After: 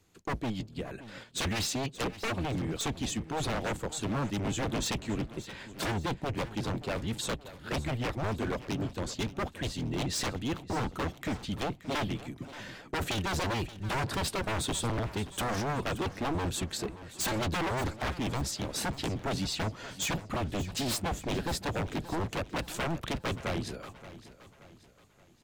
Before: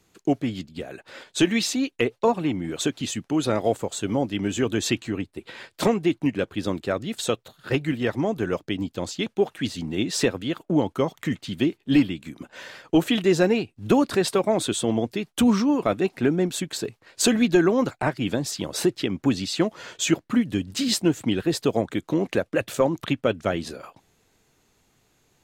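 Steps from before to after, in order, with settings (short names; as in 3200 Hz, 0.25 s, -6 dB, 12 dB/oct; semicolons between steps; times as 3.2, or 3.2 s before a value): octaver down 1 oct, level 0 dB; wavefolder -21 dBFS; feedback echo 0.576 s, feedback 44%, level -15.5 dB; gain -5 dB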